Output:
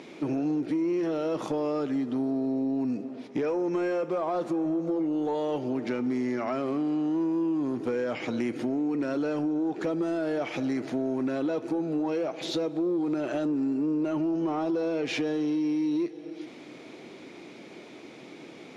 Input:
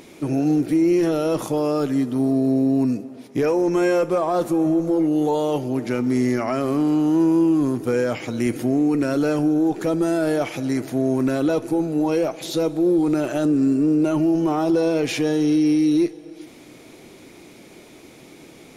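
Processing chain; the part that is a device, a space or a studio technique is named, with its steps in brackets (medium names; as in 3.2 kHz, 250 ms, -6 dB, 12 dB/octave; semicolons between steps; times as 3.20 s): AM radio (band-pass 170–4400 Hz; compression 5:1, threshold -25 dBFS, peak gain reduction 9 dB; saturation -18.5 dBFS, distortion -25 dB)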